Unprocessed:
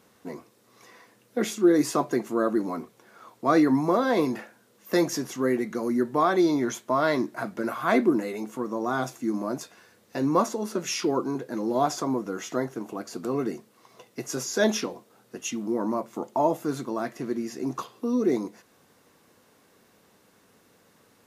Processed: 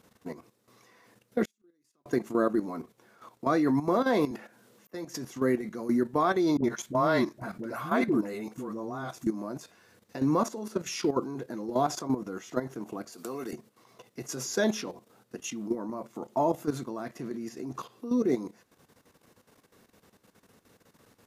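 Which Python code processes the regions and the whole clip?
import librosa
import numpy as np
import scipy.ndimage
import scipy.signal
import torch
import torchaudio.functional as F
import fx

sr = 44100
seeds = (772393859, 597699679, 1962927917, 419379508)

y = fx.chain(x, sr, fx.highpass(hz=280.0, slope=6),
    fx.peak_eq(hz=750.0, db=-10.0, octaves=1.8),
    fx.gate_flip(shuts_db=-31.0, range_db=-37), at=(1.45, 2.06))
y = fx.chain(y, sr, fx.highpass(hz=110.0, slope=12),
    fx.auto_swell(attack_ms=608.0),
    fx.band_squash(depth_pct=40), at=(4.31, 5.15))
y = fx.chain(y, sr, fx.low_shelf(hz=97.0, db=6.5),
    fx.dispersion(late='highs', ms=68.0, hz=500.0), at=(6.57, 9.27))
y = fx.chain(y, sr, fx.highpass(hz=530.0, slope=6),
    fx.high_shelf(hz=5700.0, db=11.0), at=(13.12, 13.53))
y = fx.low_shelf(y, sr, hz=120.0, db=8.0)
y = fx.level_steps(y, sr, step_db=12)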